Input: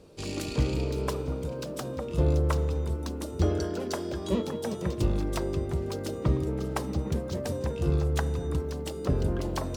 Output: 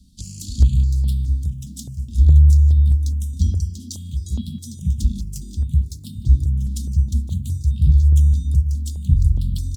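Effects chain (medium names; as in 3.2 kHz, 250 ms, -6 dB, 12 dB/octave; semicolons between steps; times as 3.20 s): dynamic bell 6.8 kHz, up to +5 dB, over -57 dBFS, Q 1.8; Chebyshev band-stop 230–3400 Hz, order 4; peaking EQ 60 Hz +12 dB 2.1 oct; hum notches 50/100 Hz; echo from a far wall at 26 m, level -19 dB; stepped phaser 4.8 Hz 450–1800 Hz; trim +5.5 dB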